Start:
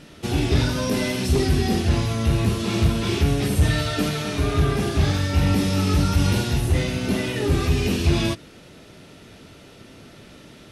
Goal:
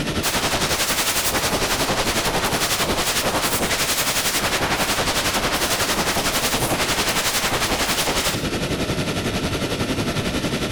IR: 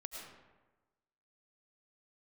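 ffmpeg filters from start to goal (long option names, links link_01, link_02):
-filter_complex "[0:a]acompressor=threshold=-27dB:ratio=16,aeval=exprs='0.0944*sin(PI/2*7.94*val(0)/0.0944)':channel_layout=same,tremolo=f=11:d=0.62,asplit=2[link_01][link_02];[1:a]atrim=start_sample=2205,afade=type=out:start_time=0.18:duration=0.01,atrim=end_sample=8379[link_03];[link_02][link_03]afir=irnorm=-1:irlink=0,volume=3.5dB[link_04];[link_01][link_04]amix=inputs=2:normalize=0"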